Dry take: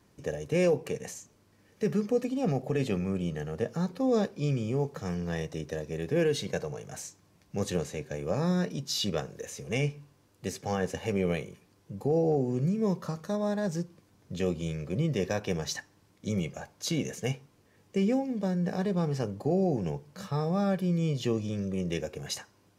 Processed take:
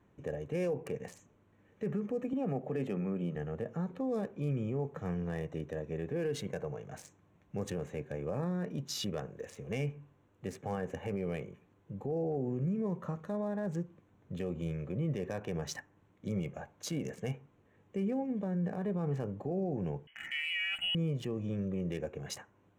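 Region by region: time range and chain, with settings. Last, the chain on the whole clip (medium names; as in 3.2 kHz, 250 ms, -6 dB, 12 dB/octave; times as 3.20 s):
2.33–3.36 s: high-pass 140 Hz 24 dB/octave + treble shelf 6.9 kHz -5.5 dB
20.07–20.95 s: high-order bell 990 Hz +11 dB 1.2 oct + frequency inversion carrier 3.1 kHz
whole clip: local Wiener filter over 9 samples; dynamic bell 4 kHz, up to -6 dB, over -56 dBFS, Q 1.4; peak limiter -24 dBFS; trim -2.5 dB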